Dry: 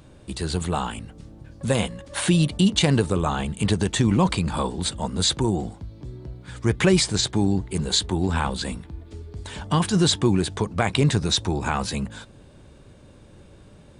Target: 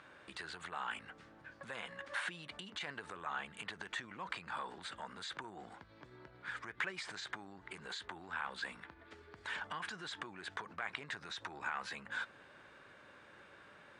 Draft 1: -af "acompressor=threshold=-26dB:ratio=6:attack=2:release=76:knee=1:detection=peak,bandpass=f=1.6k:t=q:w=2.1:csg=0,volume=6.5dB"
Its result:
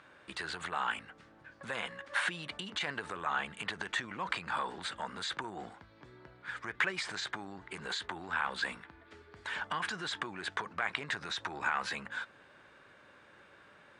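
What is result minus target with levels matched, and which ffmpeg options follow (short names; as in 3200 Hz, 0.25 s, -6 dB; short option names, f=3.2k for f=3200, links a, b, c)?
compressor: peak gain reduction -7.5 dB
-af "acompressor=threshold=-35dB:ratio=6:attack=2:release=76:knee=1:detection=peak,bandpass=f=1.6k:t=q:w=2.1:csg=0,volume=6.5dB"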